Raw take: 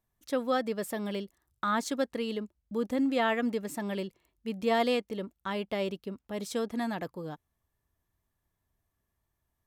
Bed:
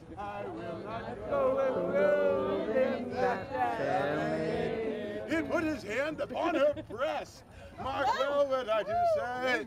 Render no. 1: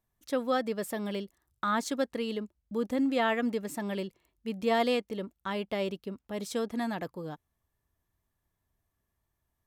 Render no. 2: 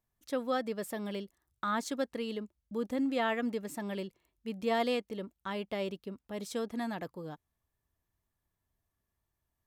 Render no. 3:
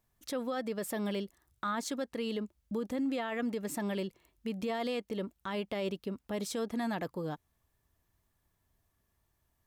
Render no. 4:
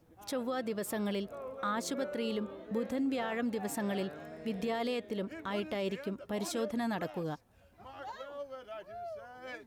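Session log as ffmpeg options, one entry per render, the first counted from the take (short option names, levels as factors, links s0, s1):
-af anull
-af "volume=0.668"
-filter_complex "[0:a]asplit=2[s0][s1];[s1]acompressor=threshold=0.00794:ratio=6,volume=1.33[s2];[s0][s2]amix=inputs=2:normalize=0,alimiter=level_in=1.41:limit=0.0631:level=0:latency=1:release=46,volume=0.708"
-filter_complex "[1:a]volume=0.178[s0];[0:a][s0]amix=inputs=2:normalize=0"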